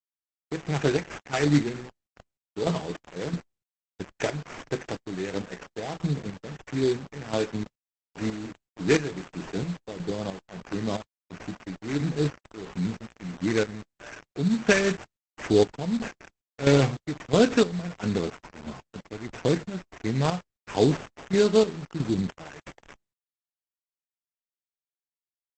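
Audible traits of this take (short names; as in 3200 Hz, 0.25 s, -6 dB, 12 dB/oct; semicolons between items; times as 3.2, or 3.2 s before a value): aliases and images of a low sample rate 4100 Hz, jitter 20%; chopped level 1.5 Hz, depth 65%, duty 45%; a quantiser's noise floor 8-bit, dither none; Opus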